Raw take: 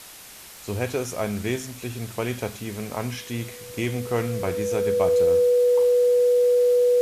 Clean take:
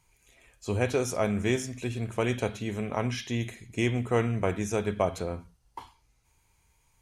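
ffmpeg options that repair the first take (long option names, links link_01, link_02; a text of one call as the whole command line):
ffmpeg -i in.wav -af "adeclick=threshold=4,bandreject=frequency=490:width=30,afwtdn=0.0079" out.wav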